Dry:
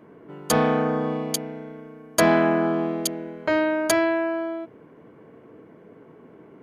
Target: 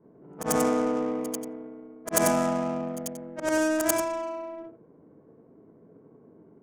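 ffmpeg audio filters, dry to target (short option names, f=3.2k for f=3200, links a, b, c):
-af "afftfilt=real='re':imag='-im':win_size=8192:overlap=0.75,adynamicsmooth=sensitivity=2.5:basefreq=730,aexciter=amount=15.3:drive=4.5:freq=6.1k"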